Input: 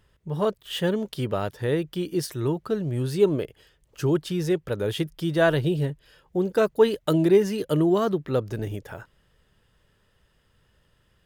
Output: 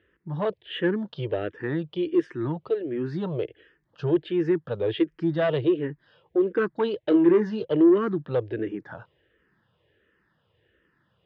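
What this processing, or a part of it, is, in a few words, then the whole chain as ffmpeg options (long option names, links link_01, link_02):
barber-pole phaser into a guitar amplifier: -filter_complex "[0:a]asplit=2[link_01][link_02];[link_02]afreqshift=-1.4[link_03];[link_01][link_03]amix=inputs=2:normalize=1,asoftclip=type=tanh:threshold=-19.5dB,highpass=100,equalizer=frequency=330:width_type=q:width=4:gain=9,equalizer=frequency=480:width_type=q:width=4:gain=4,equalizer=frequency=1700:width_type=q:width=4:gain=6,lowpass=frequency=3500:width=0.5412,lowpass=frequency=3500:width=1.3066,asettb=1/sr,asplit=3[link_04][link_05][link_06];[link_04]atrim=end=7.094[link_07];[link_05]atrim=start=7.09:end=7.63,asetpts=PTS-STARTPTS,afade=type=in:duration=0.004:curve=qsin,afade=type=out:start_time=0.536:duration=0.004:curve=qsin,asplit=2[link_08][link_09];[link_09]adelay=23,volume=-8.5dB[link_10];[link_08][link_10]amix=inputs=2:normalize=0,atrim=end_sample=23814[link_11];[link_06]atrim=start=7.626[link_12];[link_07][link_11]acrossfade=duration=0.004:curve1=hsin:curve2=qsin[link_13];[link_13][link_12]acrossfade=duration=0.004:curve1=qsin:curve2=hsin"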